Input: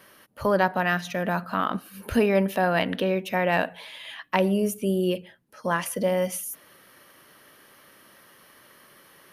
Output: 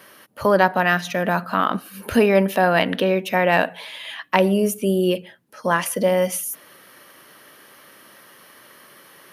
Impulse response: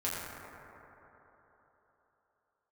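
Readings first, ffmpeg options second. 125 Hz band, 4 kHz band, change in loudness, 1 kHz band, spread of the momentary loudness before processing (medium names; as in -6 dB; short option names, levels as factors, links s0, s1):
+4.0 dB, +6.0 dB, +5.5 dB, +6.0 dB, 12 LU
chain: -af "highpass=f=150:p=1,volume=2"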